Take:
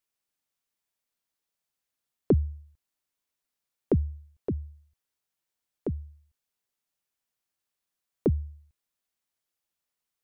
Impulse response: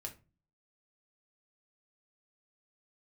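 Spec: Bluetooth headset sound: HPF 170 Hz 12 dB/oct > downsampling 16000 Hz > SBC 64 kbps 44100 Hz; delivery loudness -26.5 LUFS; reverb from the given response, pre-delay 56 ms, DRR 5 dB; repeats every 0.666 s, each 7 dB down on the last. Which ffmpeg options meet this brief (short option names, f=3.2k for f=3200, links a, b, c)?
-filter_complex "[0:a]aecho=1:1:666|1332|1998|2664|3330:0.447|0.201|0.0905|0.0407|0.0183,asplit=2[a][b];[1:a]atrim=start_sample=2205,adelay=56[c];[b][c]afir=irnorm=-1:irlink=0,volume=-2dB[d];[a][d]amix=inputs=2:normalize=0,highpass=170,aresample=16000,aresample=44100,volume=7.5dB" -ar 44100 -c:a sbc -b:a 64k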